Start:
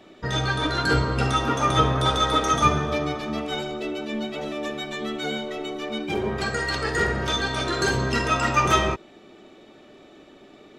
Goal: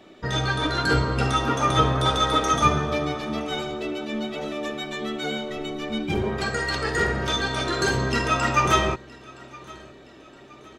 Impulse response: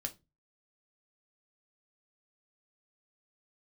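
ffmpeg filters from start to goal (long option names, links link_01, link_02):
-filter_complex "[0:a]asplit=3[link_01][link_02][link_03];[link_01]afade=type=out:start_time=5.49:duration=0.02[link_04];[link_02]asubboost=boost=2.5:cutoff=250,afade=type=in:start_time=5.49:duration=0.02,afade=type=out:start_time=6.22:duration=0.02[link_05];[link_03]afade=type=in:start_time=6.22:duration=0.02[link_06];[link_04][link_05][link_06]amix=inputs=3:normalize=0,asplit=2[link_07][link_08];[link_08]aecho=0:1:968|1936|2904:0.0708|0.0311|0.0137[link_09];[link_07][link_09]amix=inputs=2:normalize=0"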